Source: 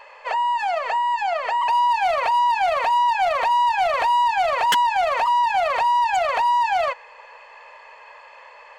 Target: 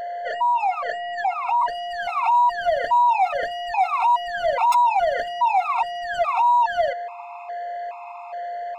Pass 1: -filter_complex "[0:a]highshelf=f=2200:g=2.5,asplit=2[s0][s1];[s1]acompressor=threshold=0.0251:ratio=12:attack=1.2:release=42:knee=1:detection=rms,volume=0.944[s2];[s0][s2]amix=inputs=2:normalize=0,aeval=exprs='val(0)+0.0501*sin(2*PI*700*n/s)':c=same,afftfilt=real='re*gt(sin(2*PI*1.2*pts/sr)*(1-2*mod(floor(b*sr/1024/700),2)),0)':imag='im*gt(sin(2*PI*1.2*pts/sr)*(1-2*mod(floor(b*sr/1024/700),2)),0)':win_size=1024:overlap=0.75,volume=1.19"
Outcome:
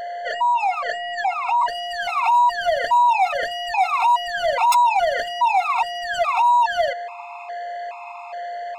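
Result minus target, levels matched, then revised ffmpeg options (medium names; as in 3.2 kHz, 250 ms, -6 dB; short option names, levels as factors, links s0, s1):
4 kHz band +5.0 dB
-filter_complex "[0:a]highshelf=f=2200:g=-7.5,asplit=2[s0][s1];[s1]acompressor=threshold=0.0251:ratio=12:attack=1.2:release=42:knee=1:detection=rms,volume=0.944[s2];[s0][s2]amix=inputs=2:normalize=0,aeval=exprs='val(0)+0.0501*sin(2*PI*700*n/s)':c=same,afftfilt=real='re*gt(sin(2*PI*1.2*pts/sr)*(1-2*mod(floor(b*sr/1024/700),2)),0)':imag='im*gt(sin(2*PI*1.2*pts/sr)*(1-2*mod(floor(b*sr/1024/700),2)),0)':win_size=1024:overlap=0.75,volume=1.19"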